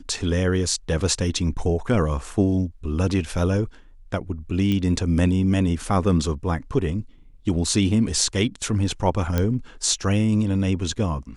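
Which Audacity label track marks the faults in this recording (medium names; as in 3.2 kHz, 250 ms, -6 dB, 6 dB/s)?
4.720000	4.720000	pop -14 dBFS
9.380000	9.380000	pop -9 dBFS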